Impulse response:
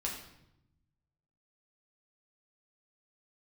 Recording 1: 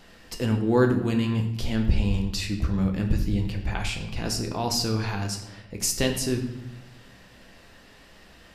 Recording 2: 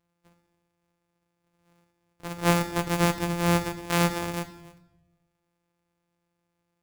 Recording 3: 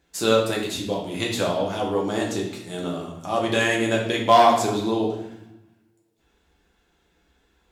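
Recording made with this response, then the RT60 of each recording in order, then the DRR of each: 3; 0.85 s, 0.90 s, 0.85 s; 2.5 dB, 7.5 dB, -2.5 dB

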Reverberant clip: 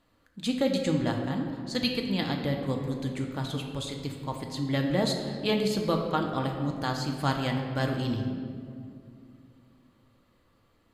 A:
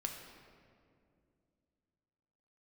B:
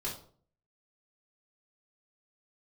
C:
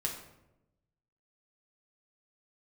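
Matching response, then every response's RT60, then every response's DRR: A; 2.4 s, 0.50 s, 0.90 s; 2.0 dB, -7.0 dB, -1.0 dB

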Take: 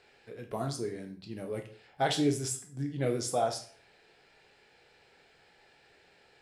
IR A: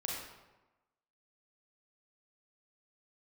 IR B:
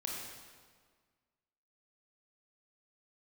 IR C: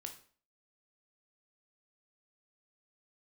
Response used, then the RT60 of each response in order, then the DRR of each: C; 1.1 s, 1.7 s, 0.45 s; -3.0 dB, -2.5 dB, 4.0 dB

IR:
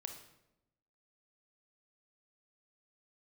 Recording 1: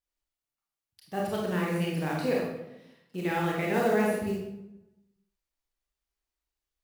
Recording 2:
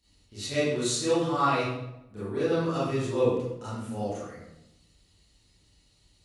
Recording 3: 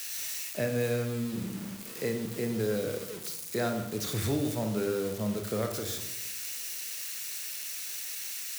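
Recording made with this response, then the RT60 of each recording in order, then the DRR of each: 3; 0.90 s, 0.90 s, 0.90 s; -3.5 dB, -12.5 dB, 5.0 dB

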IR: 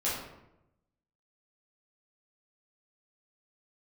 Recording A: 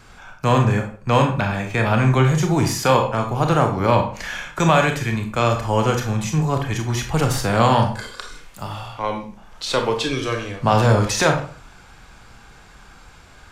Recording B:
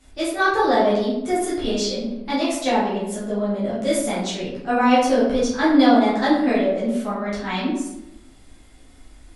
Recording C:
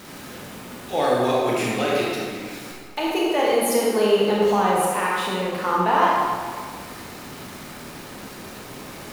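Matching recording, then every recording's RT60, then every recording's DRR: B; 0.45 s, 0.90 s, 1.8 s; 3.5 dB, -9.5 dB, -5.0 dB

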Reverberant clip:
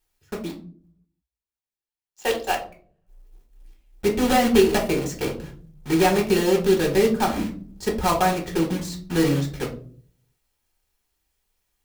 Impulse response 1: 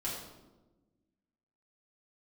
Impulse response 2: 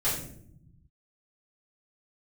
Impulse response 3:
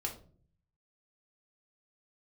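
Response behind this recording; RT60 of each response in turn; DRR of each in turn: 3; 1.1 s, 0.65 s, 0.45 s; -7.5 dB, -11.0 dB, 0.0 dB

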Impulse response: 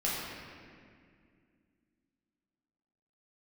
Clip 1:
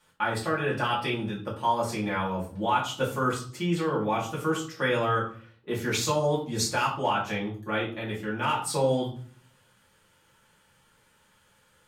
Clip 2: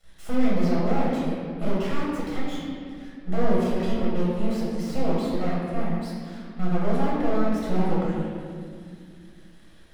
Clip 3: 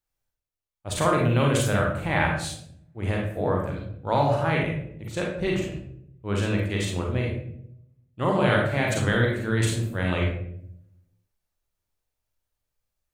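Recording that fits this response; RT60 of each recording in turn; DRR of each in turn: 2; 0.45 s, 2.2 s, 0.70 s; -6.0 dB, -7.5 dB, -2.0 dB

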